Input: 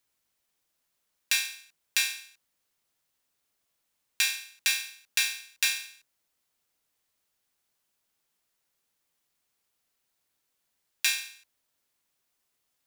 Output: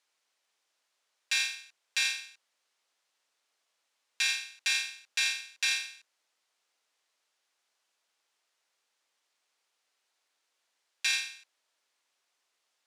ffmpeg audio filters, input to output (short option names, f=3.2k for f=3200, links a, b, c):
-af "highpass=490,lowpass=6.7k,alimiter=limit=-21.5dB:level=0:latency=1:release=22,volume=4dB"